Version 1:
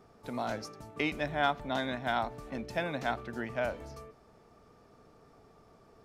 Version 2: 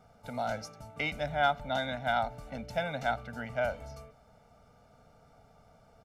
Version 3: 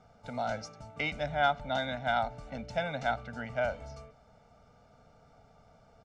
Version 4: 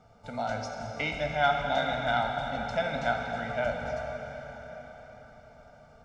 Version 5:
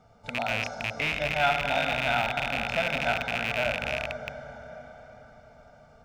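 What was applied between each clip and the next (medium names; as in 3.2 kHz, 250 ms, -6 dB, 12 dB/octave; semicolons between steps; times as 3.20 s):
comb 1.4 ms, depth 88%; trim -2.5 dB
low-pass 7.6 kHz 24 dB/octave
plate-style reverb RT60 5 s, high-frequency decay 0.85×, DRR 1 dB; trim +1 dB
rattle on loud lows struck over -40 dBFS, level -16 dBFS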